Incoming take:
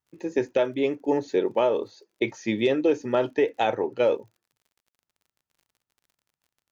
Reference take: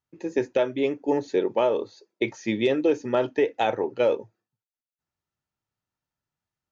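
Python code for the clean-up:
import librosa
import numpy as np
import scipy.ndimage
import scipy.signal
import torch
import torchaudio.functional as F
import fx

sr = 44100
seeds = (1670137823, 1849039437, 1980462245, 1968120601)

y = fx.fix_declick_ar(x, sr, threshold=6.5)
y = fx.fix_level(y, sr, at_s=4.17, step_db=4.0)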